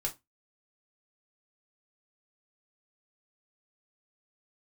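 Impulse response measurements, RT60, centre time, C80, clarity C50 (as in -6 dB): 0.20 s, 10 ms, 26.5 dB, 17.0 dB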